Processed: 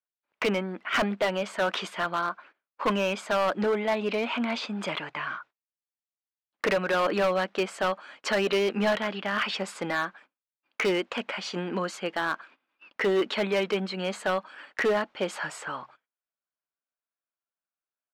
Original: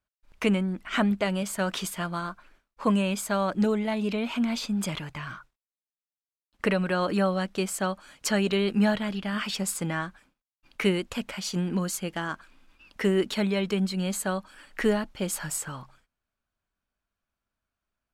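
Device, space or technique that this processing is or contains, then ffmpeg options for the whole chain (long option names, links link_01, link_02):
walkie-talkie: -af "highpass=410,lowpass=2900,asoftclip=type=hard:threshold=-26.5dB,agate=range=-17dB:threshold=-57dB:ratio=16:detection=peak,volume=6.5dB"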